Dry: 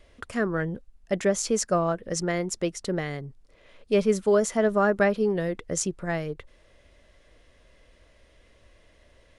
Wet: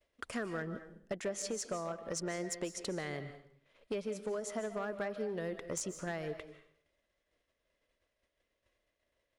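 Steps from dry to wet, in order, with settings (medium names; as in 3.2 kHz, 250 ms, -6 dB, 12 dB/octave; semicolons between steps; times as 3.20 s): expander -44 dBFS; bass shelf 140 Hz -11 dB; compression 10:1, threshold -32 dBFS, peak gain reduction 14.5 dB; one-sided clip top -29 dBFS; reverberation RT60 0.60 s, pre-delay 110 ms, DRR 10 dB; trim -2.5 dB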